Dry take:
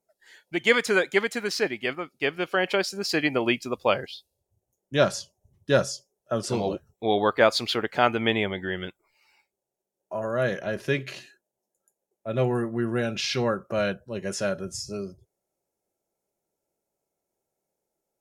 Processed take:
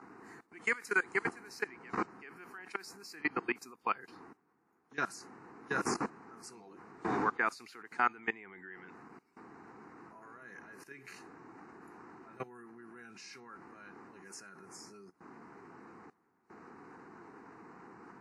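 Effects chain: wind noise 480 Hz -30 dBFS; level held to a coarse grid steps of 21 dB; high-pass 350 Hz 12 dB/octave; static phaser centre 1.4 kHz, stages 4; trim -1.5 dB; WMA 64 kbps 32 kHz

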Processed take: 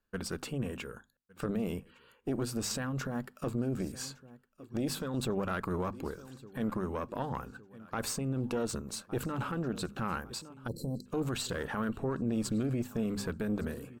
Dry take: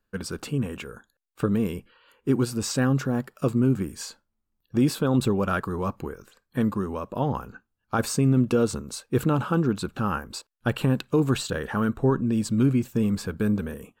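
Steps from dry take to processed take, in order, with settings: on a send: feedback delay 1160 ms, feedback 53%, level -23 dB; on the sum: peak limiter -20.5 dBFS, peak gain reduction 8.5 dB; spectral selection erased 10.67–11.06 s, 560–4000 Hz; Chebyshev shaper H 2 -8 dB, 6 -43 dB, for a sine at -15.5 dBFS; hum notches 50/100/150/200/250 Hz; trim -4.5 dB

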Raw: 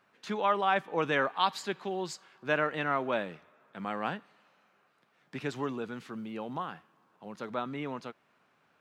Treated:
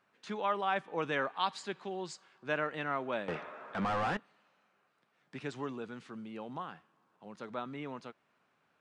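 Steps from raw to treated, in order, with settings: 3.28–4.17 s: overdrive pedal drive 32 dB, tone 1.1 kHz, clips at -17.5 dBFS; resampled via 22.05 kHz; trim -5 dB

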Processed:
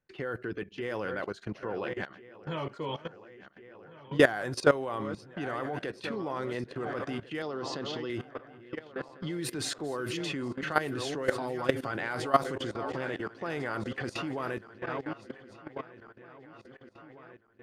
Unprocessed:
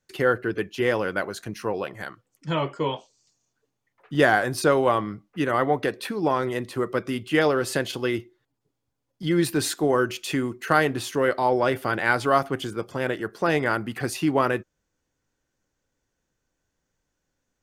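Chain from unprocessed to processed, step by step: backward echo that repeats 699 ms, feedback 69%, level -13 dB; level-controlled noise filter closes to 2.6 kHz, open at -16 dBFS; 11.26–11.91 s: comb 7.4 ms, depth 74%; level held to a coarse grid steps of 17 dB; 7.42–8.10 s: cabinet simulation 130–5900 Hz, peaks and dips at 550 Hz -4 dB, 1.6 kHz -7 dB, 2.3 kHz -9 dB

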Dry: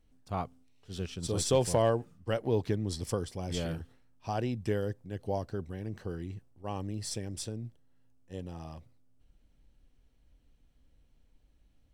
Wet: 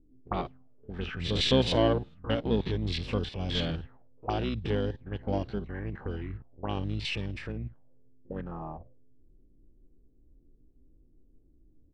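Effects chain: spectrogram pixelated in time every 50 ms; in parallel at -6.5 dB: saturation -30 dBFS, distortion -8 dB; on the sum: harmony voices -12 st -3 dB; touch-sensitive low-pass 310–3600 Hz up, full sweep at -29 dBFS; trim -1 dB

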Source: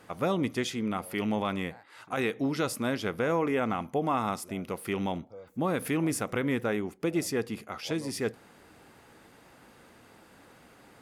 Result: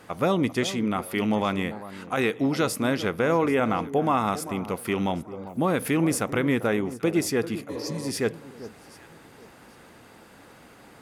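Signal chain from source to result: spectral replace 7.71–7.99 s, 300–4200 Hz after; echo whose repeats swap between lows and highs 393 ms, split 1.2 kHz, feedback 50%, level -13.5 dB; trim +5 dB

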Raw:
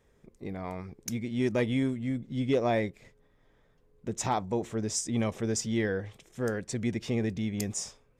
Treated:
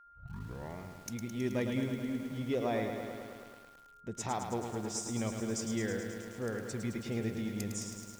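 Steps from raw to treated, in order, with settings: tape start-up on the opening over 0.78 s; whistle 1.4 kHz -49 dBFS; bit-crushed delay 107 ms, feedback 80%, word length 8-bit, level -6.5 dB; trim -7 dB

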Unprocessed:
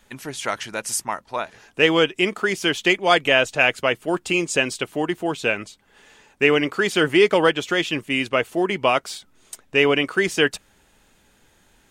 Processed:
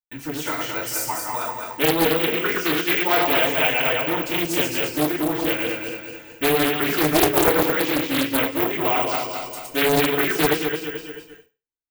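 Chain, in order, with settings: backward echo that repeats 109 ms, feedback 65%, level -2.5 dB; careless resampling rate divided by 2×, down filtered, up zero stuff; gate -40 dBFS, range -51 dB; bass shelf 93 Hz +7.5 dB; FDN reverb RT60 0.3 s, low-frequency decay 0.9×, high-frequency decay 0.95×, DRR -9.5 dB; in parallel at 0 dB: compression, threshold -14 dBFS, peak gain reduction 18.5 dB; on the sum: loudspeaker Doppler distortion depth 0.79 ms; trim -16.5 dB

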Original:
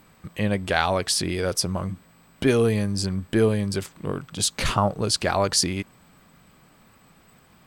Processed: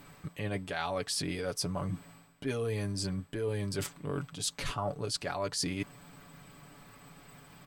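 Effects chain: comb 7 ms, depth 61%; reverse; compression 6:1, threshold -32 dBFS, peak gain reduction 18.5 dB; reverse

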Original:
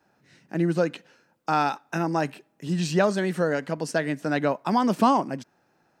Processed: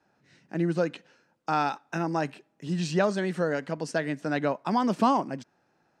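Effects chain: low-pass 8.3 kHz 12 dB/octave; trim -3 dB

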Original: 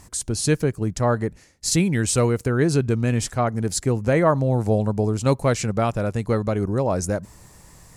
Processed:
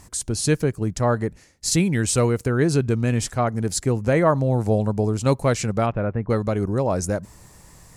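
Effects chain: 5.85–6.29 s: low-pass 3.2 kHz -> 1.6 kHz 24 dB/octave

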